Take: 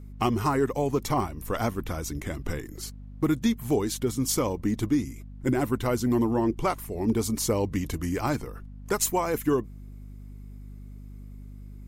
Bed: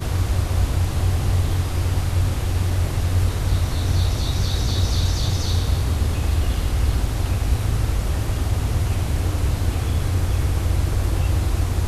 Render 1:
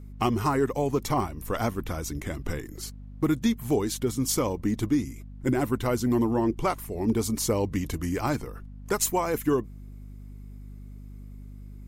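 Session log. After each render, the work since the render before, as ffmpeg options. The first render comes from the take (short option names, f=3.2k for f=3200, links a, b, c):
-af anull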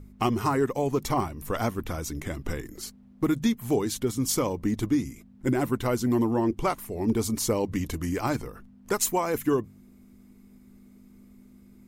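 -af "bandreject=f=50:t=h:w=4,bandreject=f=100:t=h:w=4,bandreject=f=150:t=h:w=4"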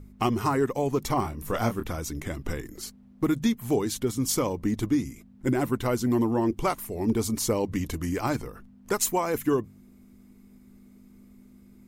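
-filter_complex "[0:a]asettb=1/sr,asplit=3[a][b][c];[a]atrim=end=1.224[d];[b]atrim=start=1.22:end=1.89,asetpts=PTS-STARTPTS,afade=t=in:d=0.004:c=qsin,afade=t=out:st=0.666:d=0.004:c=qsin,asplit=2[e][f];[f]adelay=26,volume=-7dB[g];[e][g]amix=inputs=2:normalize=0,atrim=end_sample=29547[h];[c]atrim=start=1.886[i];[d][h]acrossfade=d=0.004:c1=hsin:c2=qsin[j];[j][i]acrossfade=d=0.004:c1=qsin:c2=hsin,asettb=1/sr,asplit=3[k][l][m];[k]atrim=end=6.414[n];[l]atrim=start=6.41:end=7.08,asetpts=PTS-STARTPTS,afade=t=in:d=0.004:c=qsin,afade=t=out:st=0.666:d=0.004:c=qsin,highshelf=f=5.3k:g=4[o];[m]atrim=start=7.076[p];[n][o]acrossfade=d=0.004:c1=hsin:c2=qsin[q];[q][p]acrossfade=d=0.004:c1=qsin:c2=hsin"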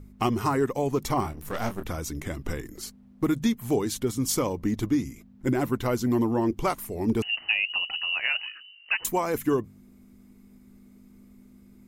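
-filter_complex "[0:a]asettb=1/sr,asplit=3[a][b][c];[a]atrim=end=1.324[d];[b]atrim=start=1.32:end=1.83,asetpts=PTS-STARTPTS,afade=t=in:d=0.004:c=qsin,afade=t=out:st=0.506:d=0.004:c=qsin,aeval=exprs='if(lt(val(0),0),0.251*val(0),val(0))':c=same[e];[c]atrim=start=1.826[f];[d][e]acrossfade=d=0.004:c1=hsin:c2=qsin[g];[g][f]acrossfade=d=0.004:c1=qsin:c2=hsin,asettb=1/sr,asplit=3[h][i][j];[h]atrim=end=4.594[k];[i]atrim=start=4.59:end=6.68,asetpts=PTS-STARTPTS,afade=t=in:d=0.004:c=qsin,afade=t=out:st=2.086:d=0.004:c=qsin,equalizer=f=8.8k:w=4.8:g=-6.5[l];[j]atrim=start=6.676[m];[k][l]acrossfade=d=0.004:c1=hsin:c2=qsin[n];[n][m]acrossfade=d=0.004:c1=qsin:c2=hsin,asettb=1/sr,asplit=3[o][p][q];[o]atrim=end=7.224[r];[p]atrim=start=7.22:end=9.05,asetpts=PTS-STARTPTS,afade=t=in:d=0.004:c=qsin,afade=t=out:st=1.826:d=0.004:c=qsin,lowpass=f=2.6k:t=q:w=0.5098,lowpass=f=2.6k:t=q:w=0.6013,lowpass=f=2.6k:t=q:w=0.9,lowpass=f=2.6k:t=q:w=2.563,afreqshift=-3000[s];[q]atrim=start=9.046[t];[r][s]acrossfade=d=0.004:c1=hsin:c2=qsin[u];[u][t]acrossfade=d=0.004:c1=qsin:c2=hsin"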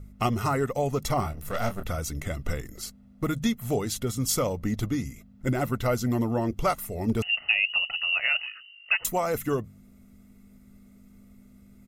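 -af "bandreject=f=790:w=12,aecho=1:1:1.5:0.53"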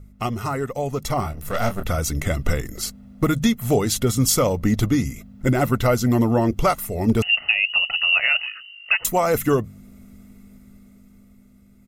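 -af "dynaudnorm=f=240:g=13:m=11dB,alimiter=limit=-7.5dB:level=0:latency=1:release=487"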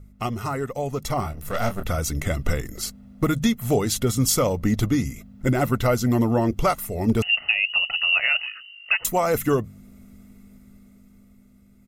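-af "volume=-2dB"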